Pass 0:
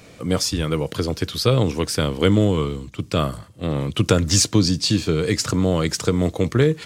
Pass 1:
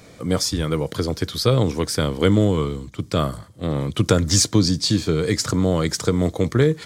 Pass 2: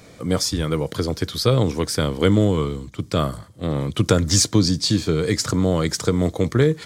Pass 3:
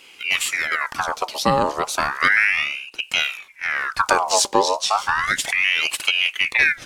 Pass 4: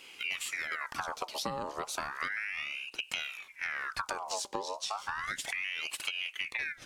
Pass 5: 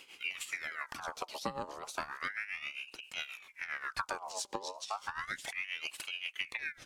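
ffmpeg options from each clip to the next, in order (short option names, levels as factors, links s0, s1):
-af "equalizer=f=2700:t=o:w=0.22:g=-9.5"
-af anull
-af "aeval=exprs='val(0)*sin(2*PI*1700*n/s+1700*0.6/0.33*sin(2*PI*0.33*n/s))':c=same,volume=1.26"
-af "acompressor=threshold=0.0447:ratio=12,volume=0.562"
-af "tremolo=f=7.5:d=0.77"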